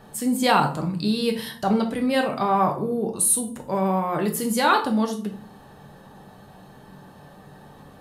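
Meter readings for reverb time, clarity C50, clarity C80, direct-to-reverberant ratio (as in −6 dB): 0.45 s, 10.0 dB, 15.0 dB, 3.0 dB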